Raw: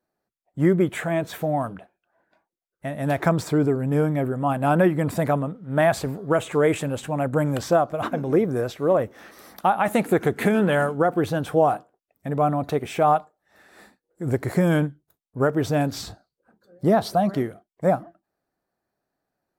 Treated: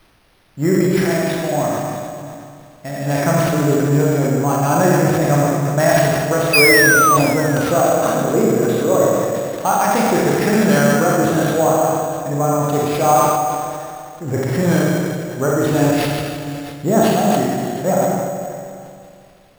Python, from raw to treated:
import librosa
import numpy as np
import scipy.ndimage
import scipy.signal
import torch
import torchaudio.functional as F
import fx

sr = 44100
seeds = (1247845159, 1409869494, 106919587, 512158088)

p1 = scipy.signal.sosfilt(scipy.signal.butter(2, 10000.0, 'lowpass', fs=sr, output='sos'), x)
p2 = fx.high_shelf(p1, sr, hz=5500.0, db=6.5)
p3 = fx.rev_schroeder(p2, sr, rt60_s=2.3, comb_ms=28, drr_db=-4.5)
p4 = fx.spec_paint(p3, sr, seeds[0], shape='fall', start_s=6.53, length_s=0.64, low_hz=1100.0, high_hz=2600.0, level_db=-12.0)
p5 = p4 + fx.echo_single(p4, sr, ms=658, db=-18.0, dry=0)
p6 = fx.dmg_noise_colour(p5, sr, seeds[1], colour='pink', level_db=-55.0)
p7 = np.repeat(p6[::6], 6)[:len(p6)]
y = fx.sustainer(p7, sr, db_per_s=28.0)